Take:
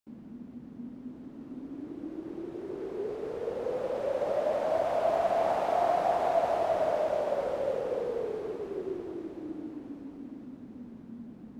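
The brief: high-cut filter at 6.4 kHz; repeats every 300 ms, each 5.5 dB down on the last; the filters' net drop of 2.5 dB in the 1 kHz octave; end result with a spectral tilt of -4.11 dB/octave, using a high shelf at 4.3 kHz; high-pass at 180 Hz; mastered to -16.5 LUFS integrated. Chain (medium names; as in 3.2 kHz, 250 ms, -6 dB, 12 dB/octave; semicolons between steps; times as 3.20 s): high-pass 180 Hz; low-pass 6.4 kHz; peaking EQ 1 kHz -4 dB; treble shelf 4.3 kHz -3.5 dB; feedback delay 300 ms, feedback 53%, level -5.5 dB; trim +15.5 dB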